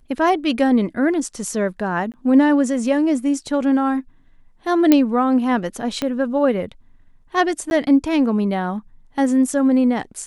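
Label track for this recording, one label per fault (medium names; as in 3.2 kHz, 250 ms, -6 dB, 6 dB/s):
2.120000	2.140000	dropout 18 ms
4.920000	4.920000	pop -1 dBFS
6.020000	6.020000	pop -9 dBFS
7.700000	7.710000	dropout 11 ms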